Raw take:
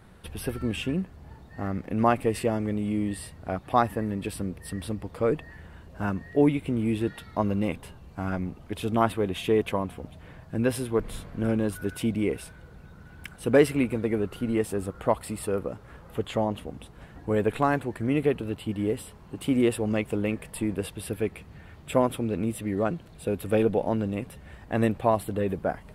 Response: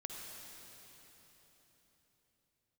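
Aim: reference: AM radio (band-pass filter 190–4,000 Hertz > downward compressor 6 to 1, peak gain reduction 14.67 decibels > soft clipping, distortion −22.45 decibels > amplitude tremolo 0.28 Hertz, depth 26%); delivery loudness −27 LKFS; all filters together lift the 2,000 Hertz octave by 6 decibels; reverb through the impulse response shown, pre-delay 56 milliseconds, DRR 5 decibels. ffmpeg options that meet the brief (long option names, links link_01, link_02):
-filter_complex "[0:a]equalizer=frequency=2000:width_type=o:gain=8,asplit=2[link_01][link_02];[1:a]atrim=start_sample=2205,adelay=56[link_03];[link_02][link_03]afir=irnorm=-1:irlink=0,volume=-3.5dB[link_04];[link_01][link_04]amix=inputs=2:normalize=0,highpass=190,lowpass=4000,acompressor=threshold=-27dB:ratio=6,asoftclip=threshold=-19dB,tremolo=f=0.28:d=0.26,volume=8dB"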